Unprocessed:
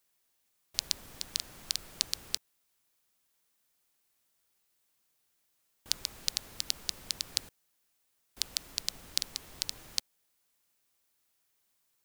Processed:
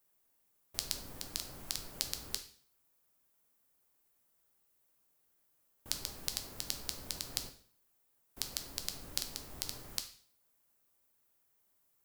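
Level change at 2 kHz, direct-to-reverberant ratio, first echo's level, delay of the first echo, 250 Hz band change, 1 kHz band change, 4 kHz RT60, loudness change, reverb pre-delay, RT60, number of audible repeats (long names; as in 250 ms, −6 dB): −3.5 dB, 5.5 dB, no echo audible, no echo audible, +3.0 dB, +0.5 dB, 0.50 s, −4.5 dB, 5 ms, 0.50 s, no echo audible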